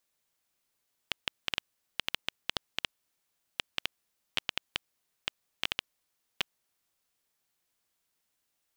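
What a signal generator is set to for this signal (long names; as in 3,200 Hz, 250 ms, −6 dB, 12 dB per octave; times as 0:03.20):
Geiger counter clicks 5.4 per second −10 dBFS 5.44 s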